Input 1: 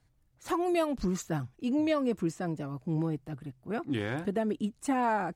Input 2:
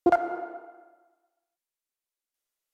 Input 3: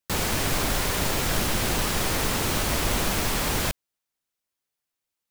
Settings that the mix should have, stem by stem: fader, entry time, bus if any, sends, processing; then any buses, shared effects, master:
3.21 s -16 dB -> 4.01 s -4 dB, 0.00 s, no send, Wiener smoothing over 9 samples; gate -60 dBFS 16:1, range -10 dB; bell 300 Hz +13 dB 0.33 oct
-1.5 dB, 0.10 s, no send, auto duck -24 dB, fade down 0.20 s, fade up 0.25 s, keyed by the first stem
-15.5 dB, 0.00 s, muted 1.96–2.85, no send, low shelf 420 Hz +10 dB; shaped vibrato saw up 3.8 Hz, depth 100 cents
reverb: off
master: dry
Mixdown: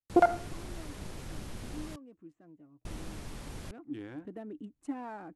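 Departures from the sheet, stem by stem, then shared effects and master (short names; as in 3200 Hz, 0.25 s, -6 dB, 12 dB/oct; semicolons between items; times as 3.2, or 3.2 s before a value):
stem 1 -16.0 dB -> -27.0 dB; stem 3 -15.5 dB -> -23.5 dB; master: extra brick-wall FIR low-pass 12000 Hz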